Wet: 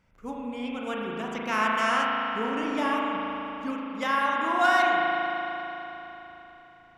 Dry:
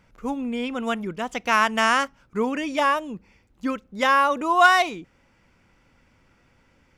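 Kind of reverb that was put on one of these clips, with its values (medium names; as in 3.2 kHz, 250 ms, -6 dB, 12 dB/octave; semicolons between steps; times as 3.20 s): spring tank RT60 3.7 s, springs 37 ms, chirp 80 ms, DRR -3.5 dB; trim -9 dB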